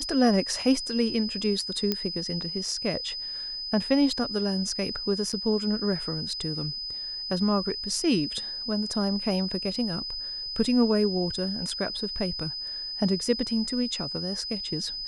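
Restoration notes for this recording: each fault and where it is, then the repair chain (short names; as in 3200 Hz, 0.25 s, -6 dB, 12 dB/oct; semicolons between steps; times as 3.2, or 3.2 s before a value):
tone 5000 Hz -32 dBFS
1.92 pop -12 dBFS
5.32–5.33 gap 7.2 ms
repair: de-click; notch 5000 Hz, Q 30; interpolate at 5.32, 7.2 ms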